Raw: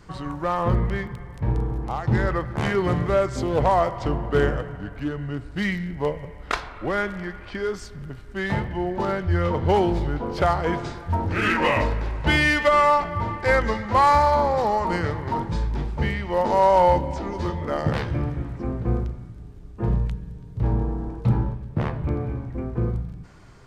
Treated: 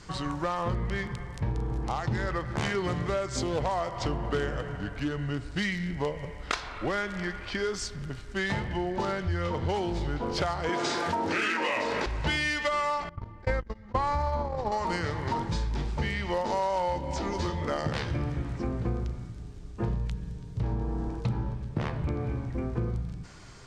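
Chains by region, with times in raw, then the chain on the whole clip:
0:10.69–0:12.06: Chebyshev high-pass filter 310 Hz + envelope flattener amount 70%
0:13.09–0:14.72: noise gate −19 dBFS, range −57 dB + spectral tilt −3 dB per octave + envelope flattener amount 50%
whole clip: Chebyshev low-pass filter 7,000 Hz, order 2; high-shelf EQ 2,800 Hz +10.5 dB; downward compressor, threshold −26 dBFS

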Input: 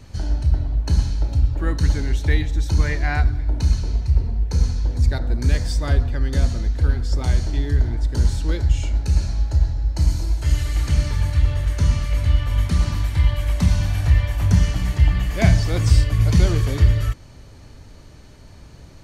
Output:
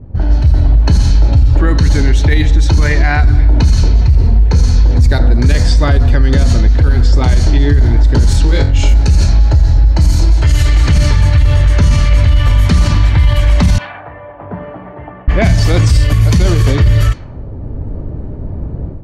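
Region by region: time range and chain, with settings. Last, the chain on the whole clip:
0:08.44–0:08.94: mu-law and A-law mismatch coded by A + compressor whose output falls as the input rises −20 dBFS, ratio −0.5 + flutter between parallel walls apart 3.7 metres, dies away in 0.31 s
0:13.78–0:15.28: high-pass filter 780 Hz + high-frequency loss of the air 500 metres
whole clip: low-pass that shuts in the quiet parts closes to 440 Hz, open at −13 dBFS; automatic gain control; boost into a limiter +12 dB; level −1 dB

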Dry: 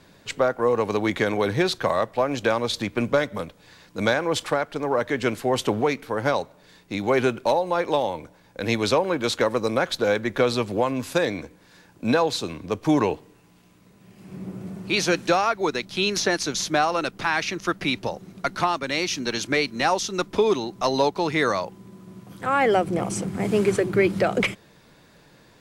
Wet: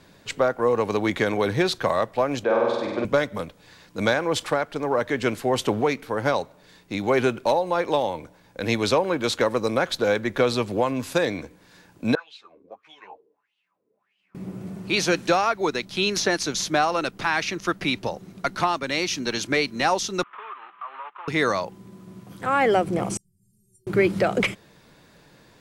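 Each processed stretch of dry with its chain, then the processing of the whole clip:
0:02.44–0:03.05: resonant band-pass 590 Hz, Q 0.78 + flutter between parallel walls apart 8.4 metres, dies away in 1.4 s
0:12.15–0:14.35: LFO wah 1.6 Hz 400–3,100 Hz, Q 7.5 + string-ensemble chorus
0:20.23–0:21.28: variable-slope delta modulation 16 kbit/s + high-pass with resonance 1,200 Hz, resonance Q 7.6 + downward compressor 2 to 1, threshold −46 dBFS
0:23.17–0:23.87: inverse Chebyshev band-stop filter 630–1,900 Hz, stop band 80 dB + parametric band 6,600 Hz −6.5 dB 2.4 octaves + stiff-string resonator 370 Hz, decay 0.38 s, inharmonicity 0.008
whole clip: no processing

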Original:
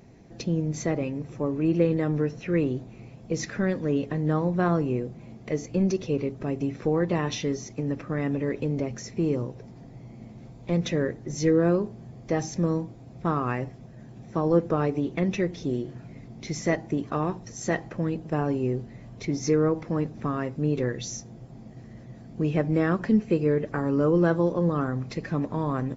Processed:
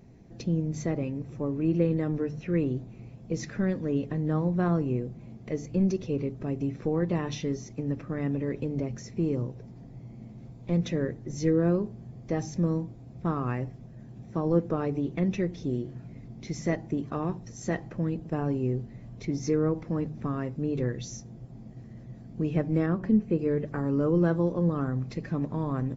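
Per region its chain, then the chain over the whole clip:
0:22.86–0:23.39: high-shelf EQ 2,100 Hz −8.5 dB + hum removal 186.6 Hz, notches 6
whole clip: low-shelf EQ 270 Hz +9 dB; mains-hum notches 50/100/150 Hz; level −6.5 dB

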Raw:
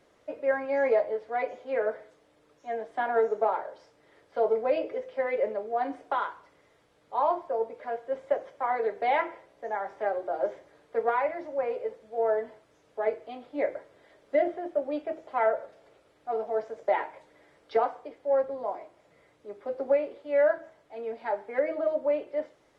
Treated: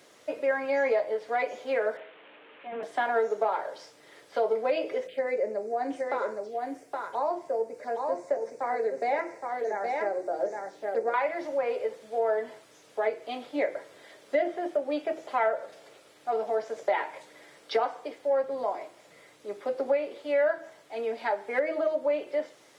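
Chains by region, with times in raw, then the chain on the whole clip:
0:01.97–0:02.83: linear delta modulator 16 kbit/s, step −53 dBFS + high-pass filter 250 Hz + double-tracking delay 22 ms −12 dB
0:05.07–0:11.14: phaser swept by the level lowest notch 590 Hz, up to 3,200 Hz, full sweep at −33.5 dBFS + parametric band 1,100 Hz −8.5 dB 1.1 octaves + single-tap delay 818 ms −5 dB
whole clip: high-pass filter 140 Hz 12 dB per octave; high-shelf EQ 2,500 Hz +12 dB; downward compressor 2 to 1, threshold −32 dBFS; level +4.5 dB

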